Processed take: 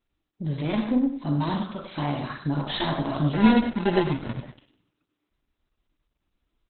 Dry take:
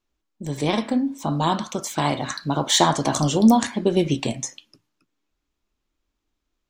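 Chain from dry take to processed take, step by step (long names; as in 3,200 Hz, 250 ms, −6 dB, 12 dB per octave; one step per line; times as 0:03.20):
one-sided soft clipper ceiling −18.5 dBFS
harmonic and percussive parts rebalanced percussive −16 dB
0:00.64–0:01.05: high-shelf EQ 9,900 Hz −11.5 dB
in parallel at 0 dB: downward compressor 20 to 1, threshold −34 dBFS, peak gain reduction 21.5 dB
0:01.89–0:02.35: on the sum: high-frequency loss of the air 83 metres
0:03.33–0:04.45: sample-rate reduction 1,200 Hz, jitter 0%
on a send: repeating echo 97 ms, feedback 26%, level −9.5 dB
on the sum: Opus 8 kbit/s 48,000 Hz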